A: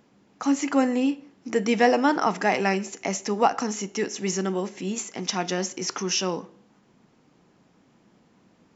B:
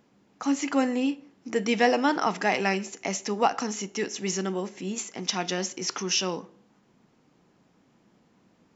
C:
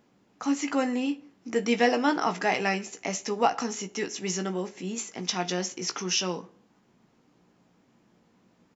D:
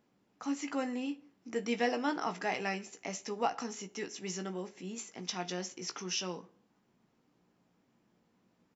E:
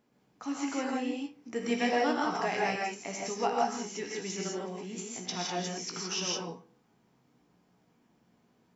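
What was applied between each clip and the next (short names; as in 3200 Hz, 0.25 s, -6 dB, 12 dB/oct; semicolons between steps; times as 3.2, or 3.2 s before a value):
dynamic EQ 3500 Hz, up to +5 dB, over -39 dBFS, Q 0.89; gain -3 dB
doubler 17 ms -8 dB; gain -1.5 dB
notch 6600 Hz, Q 30; gain -8.5 dB
non-linear reverb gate 0.19 s rising, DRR -2 dB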